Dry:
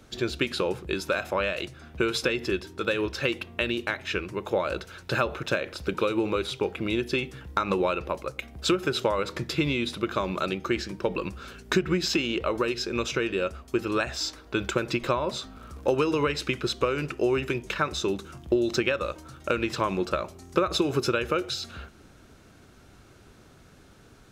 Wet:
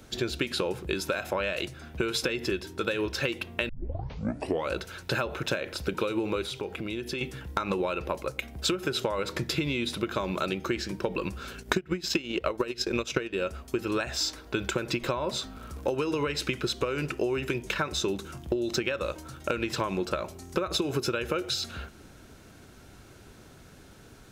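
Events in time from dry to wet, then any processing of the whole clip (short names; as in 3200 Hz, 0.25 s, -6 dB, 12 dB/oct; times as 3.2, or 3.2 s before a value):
3.69 tape start 1.03 s
6.43–7.21 compressor 3:1, threshold -34 dBFS
11.57–13.35 transient shaper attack +11 dB, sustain -8 dB
whole clip: notch 1200 Hz, Q 14; compressor, threshold -27 dBFS; high shelf 10000 Hz +6.5 dB; gain +2 dB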